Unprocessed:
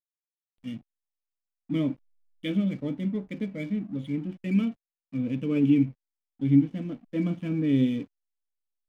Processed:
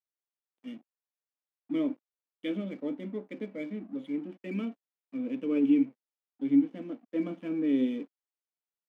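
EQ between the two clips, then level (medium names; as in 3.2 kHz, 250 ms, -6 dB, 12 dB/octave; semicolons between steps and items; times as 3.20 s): high-pass 270 Hz 24 dB/octave; treble shelf 2.6 kHz -10.5 dB; 0.0 dB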